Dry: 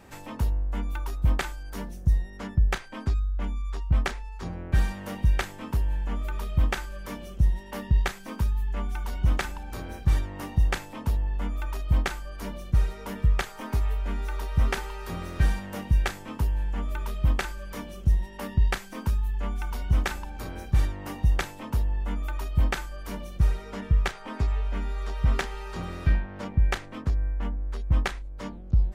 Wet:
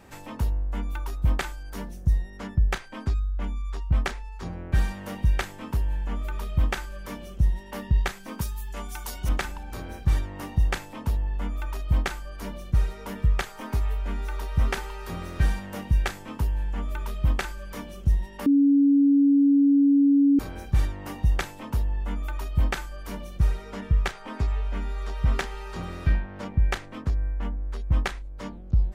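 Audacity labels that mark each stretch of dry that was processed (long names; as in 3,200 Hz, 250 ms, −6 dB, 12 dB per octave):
8.410000	9.290000	bass and treble bass −7 dB, treble +13 dB
18.460000	20.390000	beep over 281 Hz −15 dBFS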